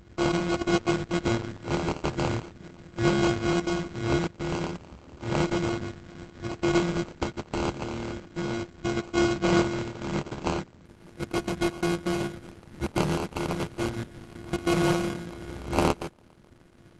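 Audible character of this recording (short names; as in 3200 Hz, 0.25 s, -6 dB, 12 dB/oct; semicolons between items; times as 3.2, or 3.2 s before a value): a buzz of ramps at a fixed pitch in blocks of 128 samples; phasing stages 2, 0.36 Hz, lowest notch 570–1700 Hz; aliases and images of a low sample rate 1800 Hz, jitter 0%; Opus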